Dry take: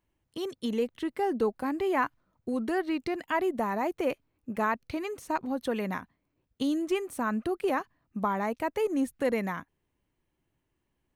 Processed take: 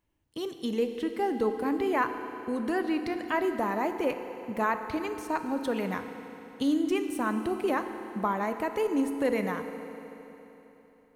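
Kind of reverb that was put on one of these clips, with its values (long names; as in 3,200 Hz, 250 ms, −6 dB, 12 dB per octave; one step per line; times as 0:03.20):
feedback delay network reverb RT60 3.5 s, high-frequency decay 0.95×, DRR 7 dB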